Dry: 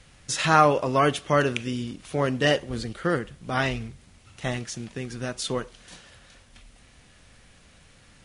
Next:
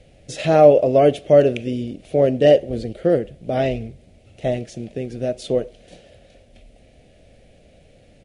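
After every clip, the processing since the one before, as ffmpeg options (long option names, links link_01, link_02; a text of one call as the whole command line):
ffmpeg -i in.wav -af "firequalizer=gain_entry='entry(170,0);entry(630,10);entry(1000,-19);entry(2300,-5);entry(5700,-11)':delay=0.05:min_phase=1,volume=3.5dB" out.wav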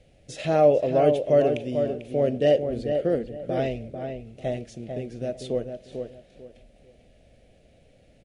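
ffmpeg -i in.wav -filter_complex "[0:a]asplit=2[link_01][link_02];[link_02]adelay=445,lowpass=frequency=1900:poles=1,volume=-6dB,asplit=2[link_03][link_04];[link_04]adelay=445,lowpass=frequency=1900:poles=1,volume=0.26,asplit=2[link_05][link_06];[link_06]adelay=445,lowpass=frequency=1900:poles=1,volume=0.26[link_07];[link_01][link_03][link_05][link_07]amix=inputs=4:normalize=0,volume=-7dB" out.wav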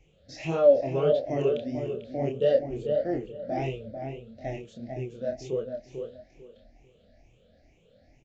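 ffmpeg -i in.wav -af "afftfilt=real='re*pow(10,16/40*sin(2*PI*(0.71*log(max(b,1)*sr/1024/100)/log(2)-(2.2)*(pts-256)/sr)))':imag='im*pow(10,16/40*sin(2*PI*(0.71*log(max(b,1)*sr/1024/100)/log(2)-(2.2)*(pts-256)/sr)))':win_size=1024:overlap=0.75,flanger=delay=22.5:depth=7.4:speed=1.6,aresample=16000,aresample=44100,volume=-3.5dB" out.wav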